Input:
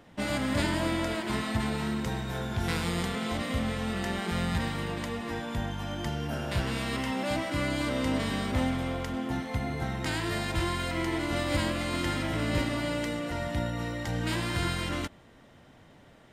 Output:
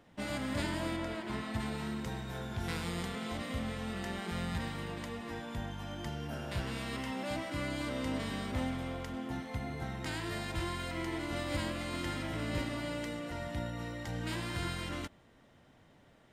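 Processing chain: 0.96–1.54 s: treble shelf 4.4 kHz -7.5 dB; trim -7 dB

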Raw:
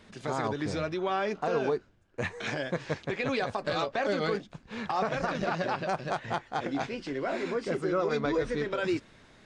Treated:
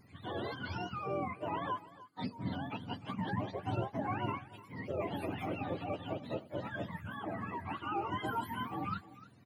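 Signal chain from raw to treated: spectrum inverted on a logarithmic axis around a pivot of 670 Hz; delay 300 ms -17.5 dB; trim -6 dB

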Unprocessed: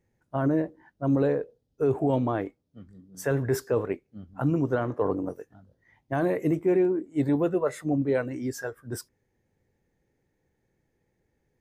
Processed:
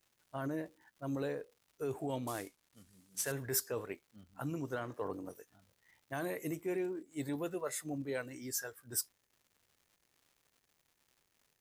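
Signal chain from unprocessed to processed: 2.27–3.32 s: CVSD coder 64 kbps; pre-emphasis filter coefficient 0.9; crackle 240 per s -62 dBFS; trim +5 dB

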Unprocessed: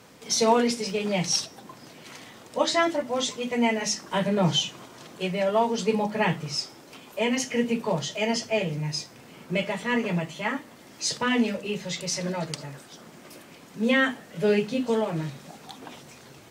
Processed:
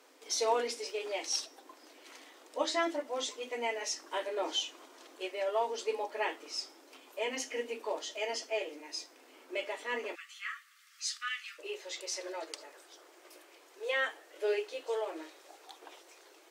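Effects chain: brick-wall FIR high-pass 260 Hz, from 10.14 s 1.1 kHz, from 11.58 s 300 Hz; trim -8.5 dB

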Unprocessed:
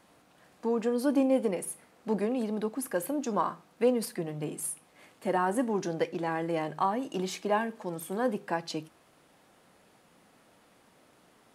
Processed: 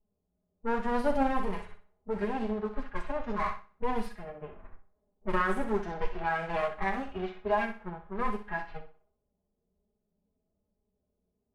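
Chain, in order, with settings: comb filter that takes the minimum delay 4.8 ms; level-controlled noise filter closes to 490 Hz, open at -26.5 dBFS; peaking EQ 1.6 kHz +9.5 dB 2.3 oct; harmonic-percussive split percussive -15 dB; resonant low shelf 110 Hz +13.5 dB, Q 1.5; level-controlled noise filter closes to 460 Hz, open at -24 dBFS; peak limiter -20 dBFS, peak gain reduction 9 dB; flange 1.2 Hz, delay 9.4 ms, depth 1.7 ms, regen -32%; flutter echo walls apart 10.7 m, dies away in 0.45 s; upward expansion 1.5:1, over -50 dBFS; trim +5 dB

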